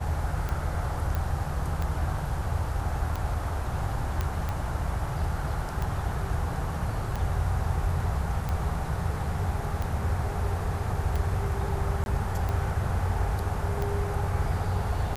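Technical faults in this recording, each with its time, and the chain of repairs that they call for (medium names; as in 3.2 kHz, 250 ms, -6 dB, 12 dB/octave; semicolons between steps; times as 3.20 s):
tick 45 rpm -18 dBFS
1.15 s: pop
4.21 s: pop -15 dBFS
12.04–12.06 s: dropout 21 ms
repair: de-click; interpolate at 12.04 s, 21 ms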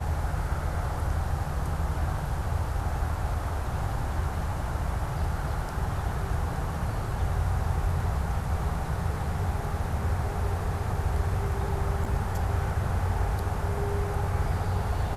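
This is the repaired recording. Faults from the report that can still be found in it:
nothing left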